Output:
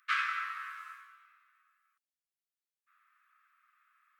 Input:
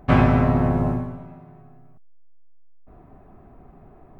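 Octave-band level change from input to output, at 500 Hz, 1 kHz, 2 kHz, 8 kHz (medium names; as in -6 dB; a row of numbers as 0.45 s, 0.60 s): under -40 dB, -11.5 dB, -2.5 dB, no reading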